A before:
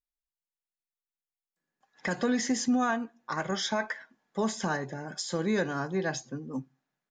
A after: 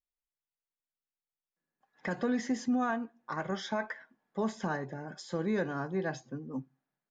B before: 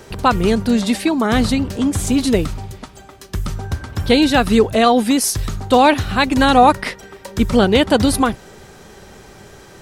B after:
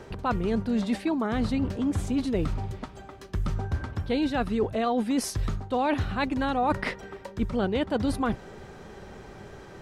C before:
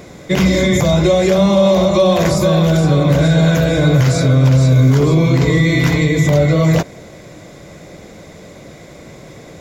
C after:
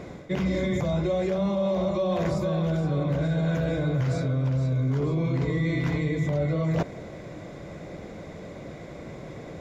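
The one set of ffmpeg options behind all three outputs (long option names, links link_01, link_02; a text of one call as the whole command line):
ffmpeg -i in.wav -af "lowpass=frequency=1900:poles=1,areverse,acompressor=threshold=-21dB:ratio=6,areverse,volume=-2.5dB" out.wav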